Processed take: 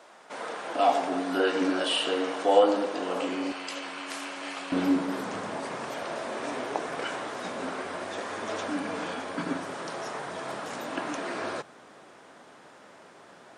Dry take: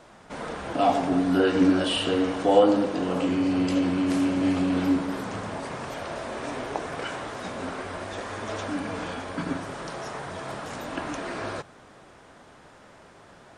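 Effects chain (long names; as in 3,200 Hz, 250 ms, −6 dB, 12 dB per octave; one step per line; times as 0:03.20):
high-pass filter 430 Hz 12 dB per octave, from 0:03.52 940 Hz, from 0:04.72 210 Hz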